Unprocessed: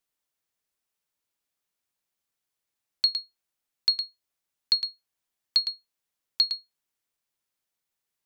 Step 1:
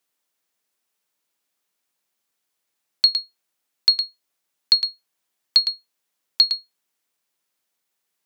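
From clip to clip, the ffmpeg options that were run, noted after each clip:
ffmpeg -i in.wav -af "highpass=170,volume=7dB" out.wav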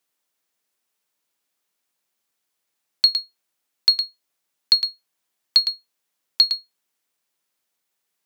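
ffmpeg -i in.wav -af "acrusher=bits=8:mode=log:mix=0:aa=0.000001" out.wav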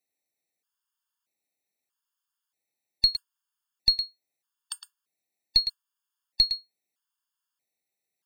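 ffmpeg -i in.wav -af "aeval=exprs='0.631*(cos(1*acos(clip(val(0)/0.631,-1,1)))-cos(1*PI/2))+0.112*(cos(2*acos(clip(val(0)/0.631,-1,1)))-cos(2*PI/2))':channel_layout=same,afftfilt=real='re*gt(sin(2*PI*0.79*pts/sr)*(1-2*mod(floor(b*sr/1024/900),2)),0)':imag='im*gt(sin(2*PI*0.79*pts/sr)*(1-2*mod(floor(b*sr/1024/900),2)),0)':win_size=1024:overlap=0.75,volume=-5.5dB" out.wav

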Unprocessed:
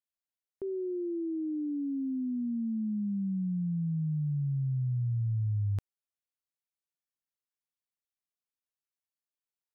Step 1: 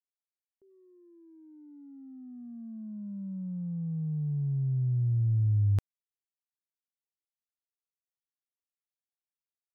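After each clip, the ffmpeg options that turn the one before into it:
ffmpeg -i in.wav -af "agate=range=-35dB:threshold=-30dB:ratio=16:detection=peak,volume=7.5dB" out.wav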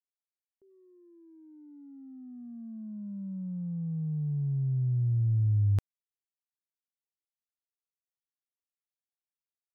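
ffmpeg -i in.wav -af anull out.wav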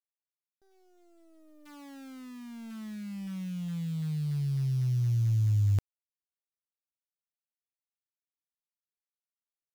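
ffmpeg -i in.wav -af "acrusher=bits=9:dc=4:mix=0:aa=0.000001" out.wav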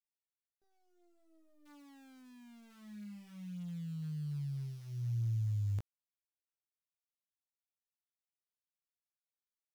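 ffmpeg -i in.wav -af "flanger=delay=17:depth=3.2:speed=0.55,volume=-7.5dB" out.wav

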